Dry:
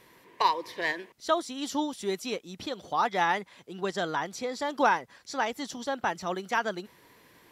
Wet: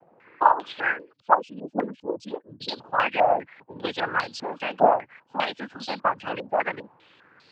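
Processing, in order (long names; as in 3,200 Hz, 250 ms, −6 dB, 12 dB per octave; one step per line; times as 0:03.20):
0:00.98–0:02.68: expanding power law on the bin magnitudes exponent 2.7
cochlear-implant simulation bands 8
harmonic generator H 7 −29 dB, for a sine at −9 dBFS
low-pass on a step sequencer 5 Hz 710–4,400 Hz
level +1.5 dB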